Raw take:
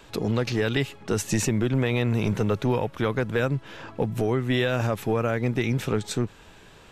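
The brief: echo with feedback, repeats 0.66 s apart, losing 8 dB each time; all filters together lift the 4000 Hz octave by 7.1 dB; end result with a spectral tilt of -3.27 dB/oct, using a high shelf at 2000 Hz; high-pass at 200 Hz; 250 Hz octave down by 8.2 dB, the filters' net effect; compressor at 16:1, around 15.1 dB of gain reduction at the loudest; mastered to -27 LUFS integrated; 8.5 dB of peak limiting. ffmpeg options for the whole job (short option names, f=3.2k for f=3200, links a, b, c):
-af "highpass=200,equalizer=f=250:t=o:g=-8.5,highshelf=f=2k:g=3.5,equalizer=f=4k:t=o:g=5.5,acompressor=threshold=-35dB:ratio=16,alimiter=level_in=4dB:limit=-24dB:level=0:latency=1,volume=-4dB,aecho=1:1:660|1320|1980|2640|3300:0.398|0.159|0.0637|0.0255|0.0102,volume=13.5dB"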